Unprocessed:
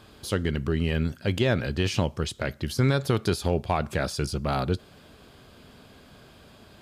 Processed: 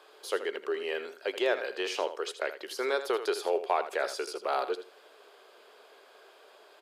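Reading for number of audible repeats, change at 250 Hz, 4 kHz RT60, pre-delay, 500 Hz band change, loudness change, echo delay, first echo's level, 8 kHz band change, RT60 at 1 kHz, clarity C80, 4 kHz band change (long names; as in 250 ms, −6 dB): 2, −14.0 dB, no reverb audible, no reverb audible, −1.0 dB, −5.0 dB, 80 ms, −11.5 dB, −5.5 dB, no reverb audible, no reverb audible, −4.5 dB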